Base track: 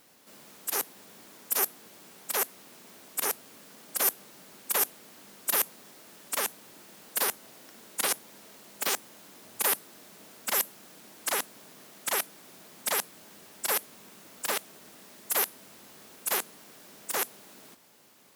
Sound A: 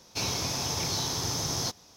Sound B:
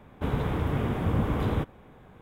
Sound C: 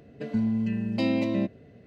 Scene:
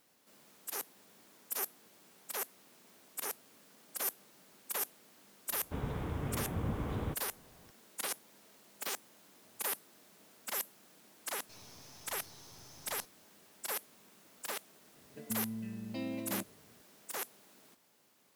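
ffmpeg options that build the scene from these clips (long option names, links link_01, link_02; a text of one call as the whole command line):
ffmpeg -i bed.wav -i cue0.wav -i cue1.wav -i cue2.wav -filter_complex "[0:a]volume=-10dB[link_01];[1:a]aeval=exprs='(tanh(79.4*val(0)+0.6)-tanh(0.6))/79.4':channel_layout=same[link_02];[2:a]atrim=end=2.21,asetpts=PTS-STARTPTS,volume=-10dB,afade=type=in:duration=0.004:curve=hsin,afade=type=out:start_time=2.206:duration=0.004:curve=hsin,adelay=5500[link_03];[link_02]atrim=end=1.96,asetpts=PTS-STARTPTS,volume=-16dB,afade=type=in:duration=0.004:curve=hsin,afade=type=out:start_time=1.956:duration=0.004:curve=hsin,adelay=11340[link_04];[3:a]atrim=end=1.86,asetpts=PTS-STARTPTS,volume=-14dB,afade=type=in:duration=0.004:curve=hsin,afade=type=out:start_time=1.856:duration=0.004:curve=hsin,adelay=14960[link_05];[link_01][link_03][link_04][link_05]amix=inputs=4:normalize=0" out.wav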